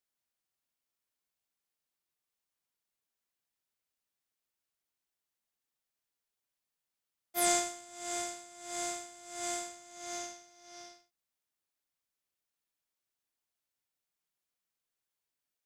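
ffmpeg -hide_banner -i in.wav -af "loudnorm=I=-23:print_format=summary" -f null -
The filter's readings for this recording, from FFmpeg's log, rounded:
Input Integrated:    -35.9 LUFS
Input True Peak:     -15.8 dBTP
Input LRA:             8.0 LU
Input Threshold:     -46.7 LUFS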